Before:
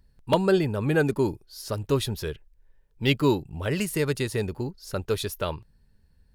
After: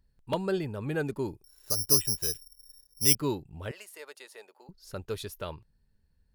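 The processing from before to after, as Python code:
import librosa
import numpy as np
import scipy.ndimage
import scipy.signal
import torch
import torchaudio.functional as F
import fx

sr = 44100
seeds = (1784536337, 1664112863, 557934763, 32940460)

y = fx.resample_bad(x, sr, factor=8, down='filtered', up='zero_stuff', at=(1.44, 3.15))
y = fx.ladder_highpass(y, sr, hz=510.0, resonance_pct=30, at=(3.71, 4.69))
y = y * 10.0 ** (-8.5 / 20.0)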